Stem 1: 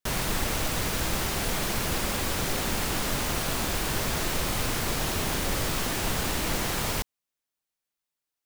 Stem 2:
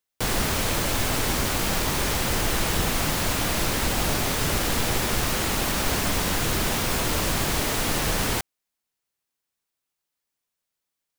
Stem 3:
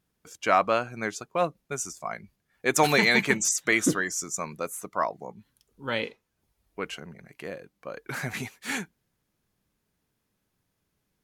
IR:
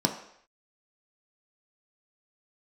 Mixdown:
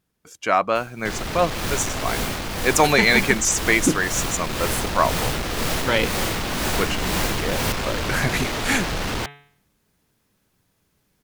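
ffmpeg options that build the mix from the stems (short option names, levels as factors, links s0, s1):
-filter_complex "[0:a]dynaudnorm=f=570:g=3:m=4.47,tremolo=f=2:d=0.79,adelay=700,volume=0.2[s0];[1:a]bandreject=f=142.8:t=h:w=4,bandreject=f=285.6:t=h:w=4,bandreject=f=428.4:t=h:w=4,bandreject=f=571.2:t=h:w=4,bandreject=f=714:t=h:w=4,bandreject=f=856.8:t=h:w=4,bandreject=f=999.6:t=h:w=4,bandreject=f=1142.4:t=h:w=4,bandreject=f=1285.2:t=h:w=4,bandreject=f=1428:t=h:w=4,bandreject=f=1570.8:t=h:w=4,bandreject=f=1713.6:t=h:w=4,bandreject=f=1856.4:t=h:w=4,bandreject=f=1999.2:t=h:w=4,bandreject=f=2142:t=h:w=4,bandreject=f=2284.8:t=h:w=4,bandreject=f=2427.6:t=h:w=4,bandreject=f=2570.4:t=h:w=4,bandreject=f=2713.2:t=h:w=4,bandreject=f=2856:t=h:w=4,bandreject=f=2998.8:t=h:w=4,bandreject=f=3141.6:t=h:w=4,bandreject=f=3284.4:t=h:w=4,bandreject=f=3427.2:t=h:w=4,bandreject=f=3570:t=h:w=4,bandreject=f=3712.8:t=h:w=4,bandreject=f=3855.6:t=h:w=4,bandreject=f=3998.4:t=h:w=4,acrossover=split=5500[s1][s2];[s2]acompressor=threshold=0.00708:ratio=4:attack=1:release=60[s3];[s1][s3]amix=inputs=2:normalize=0,asoftclip=type=tanh:threshold=0.0447,adelay=850,volume=0.794[s4];[2:a]volume=1.26[s5];[s0][s4][s5]amix=inputs=3:normalize=0,dynaudnorm=f=240:g=7:m=2.24"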